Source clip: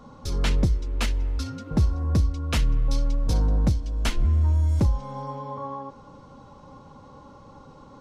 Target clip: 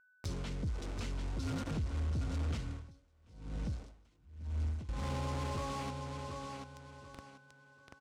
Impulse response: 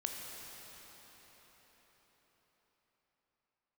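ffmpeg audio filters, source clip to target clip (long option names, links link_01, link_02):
-filter_complex "[0:a]acrusher=bits=5:mix=0:aa=0.000001,alimiter=level_in=0.5dB:limit=-24dB:level=0:latency=1:release=63,volume=-0.5dB,acompressor=threshold=-42dB:ratio=3,highpass=frequency=62:width=0.5412,highpass=frequency=62:width=1.3066,aeval=exprs='val(0)+0.000316*sin(2*PI*1500*n/s)':channel_layout=same,lowpass=frequency=8700:width=0.5412,lowpass=frequency=8700:width=1.3066,aecho=1:1:736|1472|2208:0.447|0.121|0.0326,asoftclip=type=tanh:threshold=-40dB,lowshelf=frequency=450:gain=7,bandreject=frequency=1700:width=23,asettb=1/sr,asplit=3[link_01][link_02][link_03];[link_01]atrim=end=2.634[link_04];[link_02]atrim=start=2.63:end=4.89,asetpts=PTS-STARTPTS,afade=type=in:duration=0.004:curve=qsin,afade=type=out:start_time=2.256:duration=0.004:curve=qsin,aeval=exprs='val(0)*pow(10,-30*(0.5-0.5*cos(2*PI*1*n/s))/20)':channel_layout=same[link_05];[link_03]atrim=start=4.886[link_06];[link_04][link_05]acrossfade=duration=0.004:curve1=hsin:curve2=qsin[link_07];[link_07][link_06]acrossfade=duration=0.004:curve1=qsin:curve2=hsin,volume=3.5dB"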